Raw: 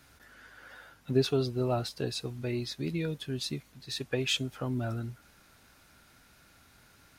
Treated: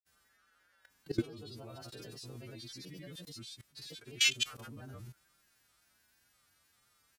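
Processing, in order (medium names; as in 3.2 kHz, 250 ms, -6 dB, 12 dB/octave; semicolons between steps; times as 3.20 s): partials quantised in pitch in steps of 2 st; level held to a coarse grid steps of 23 dB; granulator, grains 23 per s, pitch spread up and down by 3 st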